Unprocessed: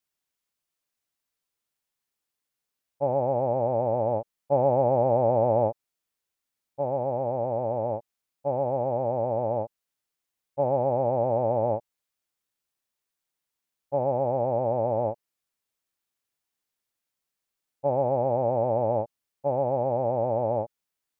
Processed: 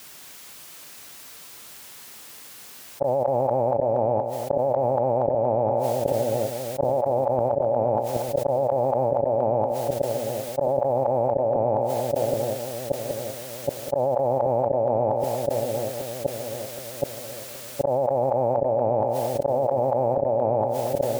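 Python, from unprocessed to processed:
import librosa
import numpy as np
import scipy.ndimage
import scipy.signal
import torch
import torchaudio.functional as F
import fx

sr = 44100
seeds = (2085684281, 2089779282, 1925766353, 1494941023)

p1 = scipy.signal.sosfilt(scipy.signal.butter(2, 89.0, 'highpass', fs=sr, output='sos'), x)
p2 = fx.gate_flip(p1, sr, shuts_db=-20.0, range_db=-36)
p3 = fx.rider(p2, sr, range_db=5, speed_s=2.0)
p4 = p3 + fx.echo_split(p3, sr, split_hz=640.0, low_ms=774, high_ms=235, feedback_pct=52, wet_db=-9.5, dry=0)
p5 = fx.dynamic_eq(p4, sr, hz=580.0, q=2.1, threshold_db=-50.0, ratio=4.0, max_db=4)
y = fx.env_flatten(p5, sr, amount_pct=100)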